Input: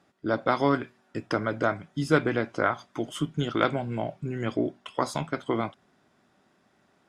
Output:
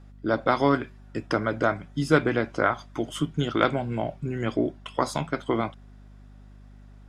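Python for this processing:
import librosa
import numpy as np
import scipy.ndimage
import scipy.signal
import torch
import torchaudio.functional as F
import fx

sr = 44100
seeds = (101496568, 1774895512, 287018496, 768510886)

y = fx.add_hum(x, sr, base_hz=50, snr_db=21)
y = y * 10.0 ** (2.0 / 20.0)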